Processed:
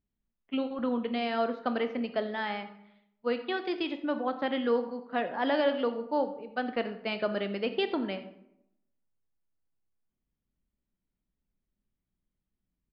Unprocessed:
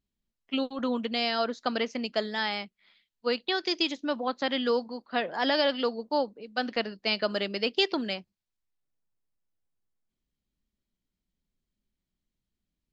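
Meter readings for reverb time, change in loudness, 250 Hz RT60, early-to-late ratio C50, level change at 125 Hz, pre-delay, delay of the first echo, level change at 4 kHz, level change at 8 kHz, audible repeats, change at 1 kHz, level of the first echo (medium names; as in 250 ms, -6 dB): 0.80 s, -2.5 dB, 0.90 s, 11.0 dB, no reading, 18 ms, 87 ms, -10.0 dB, no reading, 1, -1.0 dB, -18.0 dB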